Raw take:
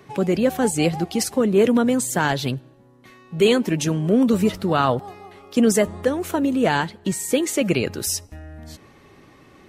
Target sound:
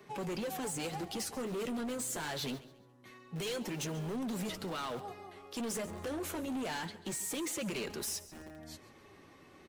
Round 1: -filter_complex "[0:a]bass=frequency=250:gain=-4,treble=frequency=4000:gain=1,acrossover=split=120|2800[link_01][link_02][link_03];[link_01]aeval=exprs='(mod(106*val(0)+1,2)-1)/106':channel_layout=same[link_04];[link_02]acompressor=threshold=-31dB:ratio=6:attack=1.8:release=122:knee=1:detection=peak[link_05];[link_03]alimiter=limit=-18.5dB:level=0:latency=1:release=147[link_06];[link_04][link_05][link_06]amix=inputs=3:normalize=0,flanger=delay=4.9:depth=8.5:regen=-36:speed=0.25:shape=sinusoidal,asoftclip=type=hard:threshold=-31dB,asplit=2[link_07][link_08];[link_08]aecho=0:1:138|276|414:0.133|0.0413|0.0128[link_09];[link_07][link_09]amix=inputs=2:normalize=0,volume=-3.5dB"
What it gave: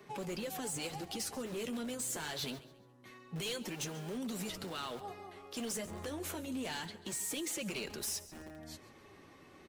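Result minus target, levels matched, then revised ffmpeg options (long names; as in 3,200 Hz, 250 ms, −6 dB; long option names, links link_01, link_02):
downward compressor: peak gain reduction +6.5 dB
-filter_complex "[0:a]bass=frequency=250:gain=-4,treble=frequency=4000:gain=1,acrossover=split=120|2800[link_01][link_02][link_03];[link_01]aeval=exprs='(mod(106*val(0)+1,2)-1)/106':channel_layout=same[link_04];[link_02]acompressor=threshold=-23.5dB:ratio=6:attack=1.8:release=122:knee=1:detection=peak[link_05];[link_03]alimiter=limit=-18.5dB:level=0:latency=1:release=147[link_06];[link_04][link_05][link_06]amix=inputs=3:normalize=0,flanger=delay=4.9:depth=8.5:regen=-36:speed=0.25:shape=sinusoidal,asoftclip=type=hard:threshold=-31dB,asplit=2[link_07][link_08];[link_08]aecho=0:1:138|276|414:0.133|0.0413|0.0128[link_09];[link_07][link_09]amix=inputs=2:normalize=0,volume=-3.5dB"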